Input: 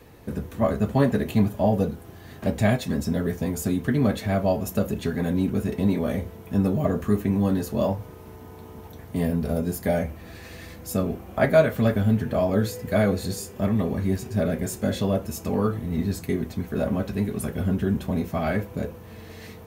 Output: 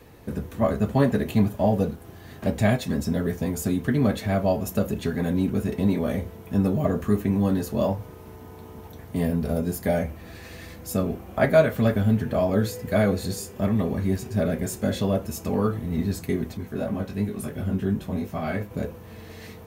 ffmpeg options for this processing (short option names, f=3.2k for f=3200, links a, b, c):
-filter_complex "[0:a]asettb=1/sr,asplit=3[a][b][c];[a]atrim=end=1.564[d];[b]atrim=start=1.56:end=2.01,asetpts=PTS-STARTPTS,afade=t=in:d=0.004:c=qsin,afade=t=out:st=0.446:d=0.004:c=qsin,aeval=exprs='sgn(val(0))*max(abs(val(0))-0.00266,0)':c=same[e];[c]atrim=start=2.006[f];[d][e]acrossfade=d=0.004:c1=hsin:c2=qsin[g];[g][f]acrossfade=d=0.004:c1=qsin:c2=hsin,asettb=1/sr,asplit=3[h][i][j];[h]atrim=end=16.574[k];[i]atrim=start=16.57:end=18.71,asetpts=PTS-STARTPTS,afade=t=in:d=0.004:c=qsin,afade=t=out:st=2.136:d=0.004:c=qsin,flanger=delay=19:depth=2.4:speed=2.8[l];[j]atrim=start=18.706[m];[k][l]acrossfade=d=0.004:c1=hsin:c2=qsin[n];[n][m]acrossfade=d=0.004:c1=qsin:c2=hsin"